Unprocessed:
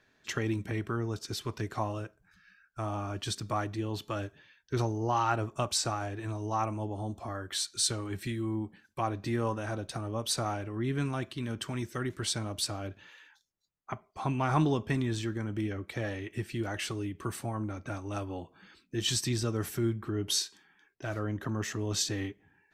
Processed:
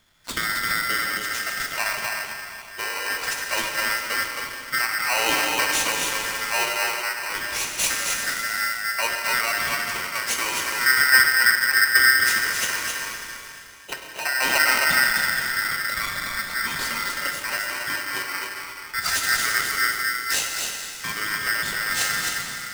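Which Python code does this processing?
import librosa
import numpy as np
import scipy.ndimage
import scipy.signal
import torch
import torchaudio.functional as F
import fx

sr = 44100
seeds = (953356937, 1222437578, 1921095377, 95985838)

y = fx.tilt_eq(x, sr, slope=-3.5, at=(10.86, 12.18))
y = fx.steep_highpass(y, sr, hz=2200.0, slope=36, at=(19.92, 20.4))
y = y + 10.0 ** (-4.5 / 20.0) * np.pad(y, (int(264 * sr / 1000.0), 0))[:len(y)]
y = fx.rev_plate(y, sr, seeds[0], rt60_s=2.9, hf_ratio=0.95, predelay_ms=0, drr_db=1.0)
y = y * np.sign(np.sin(2.0 * np.pi * 1700.0 * np.arange(len(y)) / sr))
y = y * librosa.db_to_amplitude(4.5)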